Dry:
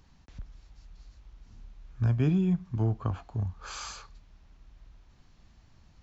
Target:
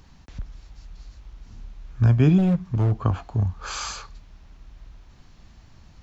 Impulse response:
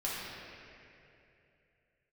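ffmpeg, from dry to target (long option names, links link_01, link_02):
-filter_complex "[0:a]asettb=1/sr,asplit=3[link_01][link_02][link_03];[link_01]atrim=end=2.384[link_04];[link_02]atrim=start=2.38:end=2.92,asetpts=PTS-STARTPTS,afade=type=in:duration=0.004:curve=qsin,afade=type=out:start_time=0.536:duration=0.004:curve=qsin,volume=25.5dB,asoftclip=hard,volume=-25.5dB[link_05];[link_03]atrim=start=2.916[link_06];[link_04][link_05]acrossfade=duration=0.004:curve1=hsin:curve2=qsin[link_07];[link_07][link_06]acrossfade=duration=0.004:curve1=qsin:curve2=hsin,volume=8.5dB"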